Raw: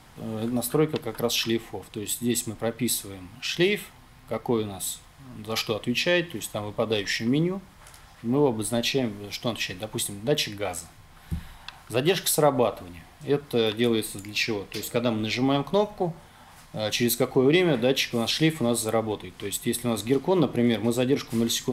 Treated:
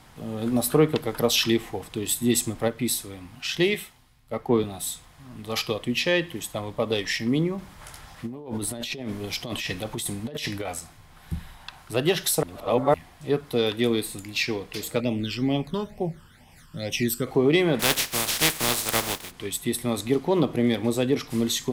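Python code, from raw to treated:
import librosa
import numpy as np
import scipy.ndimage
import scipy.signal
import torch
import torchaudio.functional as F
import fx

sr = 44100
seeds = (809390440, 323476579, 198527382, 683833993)

y = fx.band_widen(x, sr, depth_pct=70, at=(3.74, 4.64))
y = fx.over_compress(y, sr, threshold_db=-32.0, ratio=-1.0, at=(7.58, 10.69))
y = fx.phaser_stages(y, sr, stages=12, low_hz=670.0, high_hz=1400.0, hz=2.2, feedback_pct=25, at=(15.0, 17.27))
y = fx.spec_flatten(y, sr, power=0.27, at=(17.79, 19.3), fade=0.02)
y = fx.edit(y, sr, fx.clip_gain(start_s=0.46, length_s=2.22, db=3.5),
    fx.reverse_span(start_s=12.43, length_s=0.51), tone=tone)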